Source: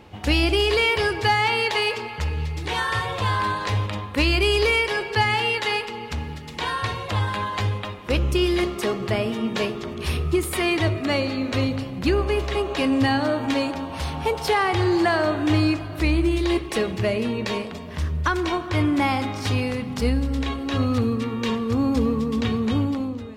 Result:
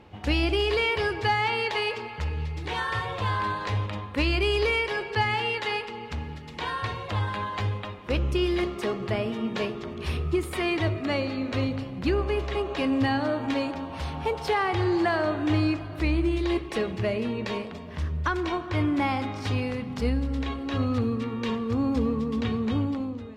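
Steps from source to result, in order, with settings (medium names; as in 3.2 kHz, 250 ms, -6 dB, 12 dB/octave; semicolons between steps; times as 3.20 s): treble shelf 6.4 kHz -11.5 dB; trim -4 dB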